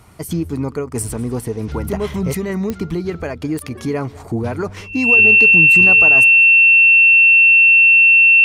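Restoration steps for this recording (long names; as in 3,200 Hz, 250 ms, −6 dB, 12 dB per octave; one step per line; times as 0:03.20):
click removal
notch filter 2,700 Hz, Q 30
echo removal 198 ms −22 dB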